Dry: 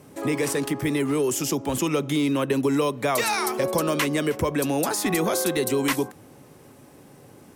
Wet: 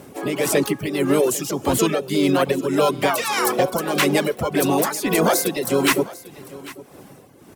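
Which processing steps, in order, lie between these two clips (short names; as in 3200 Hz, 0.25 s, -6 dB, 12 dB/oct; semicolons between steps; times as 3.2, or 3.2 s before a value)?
Schroeder reverb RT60 1.5 s, combs from 33 ms, DRR 12.5 dB; harmoniser +5 st -4 dB; tremolo 1.7 Hz, depth 56%; reverb removal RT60 0.67 s; on a send: echo 0.797 s -19 dB; on the sum: gain +6 dB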